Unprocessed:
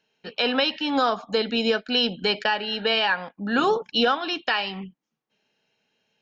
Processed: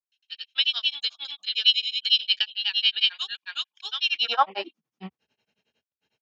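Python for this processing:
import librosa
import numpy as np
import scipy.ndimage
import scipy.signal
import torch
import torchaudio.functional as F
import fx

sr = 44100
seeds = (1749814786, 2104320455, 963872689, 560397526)

y = fx.granulator(x, sr, seeds[0], grain_ms=100.0, per_s=11.0, spray_ms=420.0, spread_st=0)
y = fx.filter_sweep_highpass(y, sr, from_hz=3300.0, to_hz=72.0, start_s=4.04, end_s=5.04, q=3.3)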